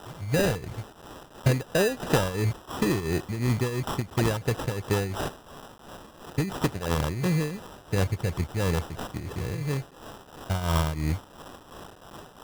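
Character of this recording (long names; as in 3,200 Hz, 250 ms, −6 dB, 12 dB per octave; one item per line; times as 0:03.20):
a quantiser's noise floor 8 bits, dither triangular
tremolo triangle 2.9 Hz, depth 75%
aliases and images of a low sample rate 2,200 Hz, jitter 0%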